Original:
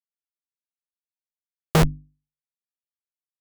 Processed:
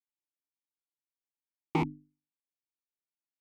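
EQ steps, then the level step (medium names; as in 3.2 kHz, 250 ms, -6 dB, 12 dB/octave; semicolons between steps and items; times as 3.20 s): vowel filter u; +5.0 dB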